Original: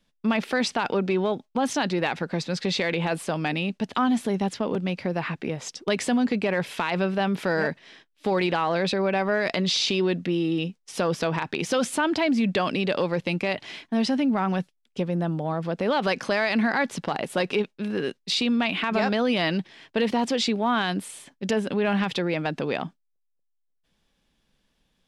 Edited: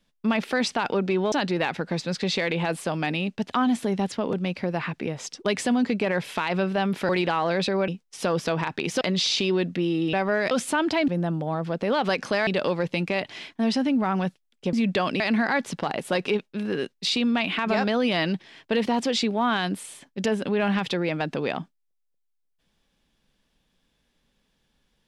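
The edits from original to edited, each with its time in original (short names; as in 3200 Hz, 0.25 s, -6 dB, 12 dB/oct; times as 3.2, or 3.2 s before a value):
1.32–1.74 cut
7.51–8.34 cut
9.13–9.51 swap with 10.63–11.76
12.33–12.8 swap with 15.06–16.45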